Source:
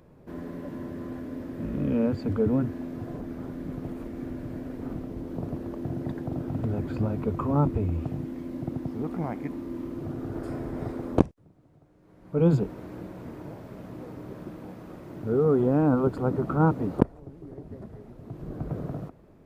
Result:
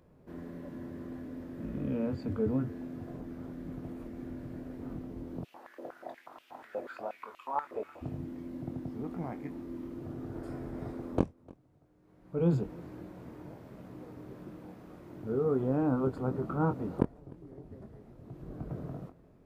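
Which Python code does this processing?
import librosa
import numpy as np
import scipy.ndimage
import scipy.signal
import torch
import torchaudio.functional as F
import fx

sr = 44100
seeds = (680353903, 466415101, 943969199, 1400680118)

y = fx.doubler(x, sr, ms=23.0, db=-8.5)
y = y + 10.0 ** (-23.5 / 20.0) * np.pad(y, (int(302 * sr / 1000.0), 0))[:len(y)]
y = fx.filter_held_highpass(y, sr, hz=8.3, low_hz=540.0, high_hz=2800.0, at=(5.43, 8.01), fade=0.02)
y = y * librosa.db_to_amplitude(-7.5)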